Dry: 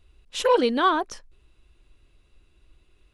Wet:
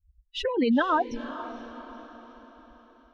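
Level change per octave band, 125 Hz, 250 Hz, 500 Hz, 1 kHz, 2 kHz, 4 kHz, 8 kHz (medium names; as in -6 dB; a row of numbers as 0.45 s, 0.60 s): no reading, +2.5 dB, -5.5 dB, -4.5 dB, -2.0 dB, -5.0 dB, under -10 dB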